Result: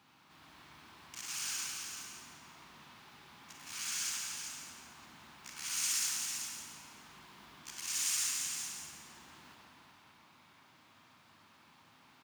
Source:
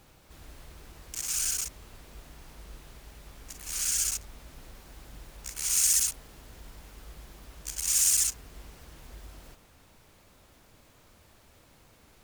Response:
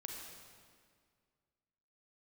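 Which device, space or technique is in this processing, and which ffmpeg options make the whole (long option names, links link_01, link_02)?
PA in a hall: -filter_complex "[0:a]highpass=frequency=110:width=0.5412,highpass=frequency=110:width=1.3066,equalizer=frequency=125:width_type=o:width=1:gain=-4,equalizer=frequency=250:width_type=o:width=1:gain=4,equalizer=frequency=500:width_type=o:width=1:gain=-11,equalizer=frequency=1000:width_type=o:width=1:gain=8,equalizer=frequency=8000:width_type=o:width=1:gain=-5,equalizer=frequency=16000:width_type=o:width=1:gain=-7,equalizer=frequency=3300:width_type=o:width=2.1:gain=5.5,aecho=1:1:170:0.398[link_01];[1:a]atrim=start_sample=2205[link_02];[link_01][link_02]afir=irnorm=-1:irlink=0,aecho=1:1:386:0.398,volume=-3.5dB"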